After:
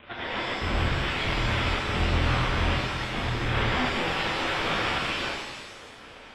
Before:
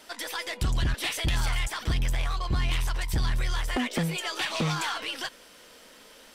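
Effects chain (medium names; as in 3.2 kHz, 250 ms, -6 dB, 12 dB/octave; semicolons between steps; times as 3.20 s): wow and flutter 17 cents; careless resampling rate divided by 8×, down none, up hold; 4.00–4.67 s: comb 2.2 ms, depth 70%; one-sided clip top -27 dBFS; bit crusher 8-bit; 0.90–1.49 s: compression 12:1, threshold -28 dBFS, peak gain reduction 4.5 dB; 2.74–3.44 s: high-pass 150 Hz -> 48 Hz 24 dB/octave; integer overflow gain 27 dB; resampled via 8 kHz; pitch-shifted reverb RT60 1.4 s, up +7 st, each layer -8 dB, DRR -3.5 dB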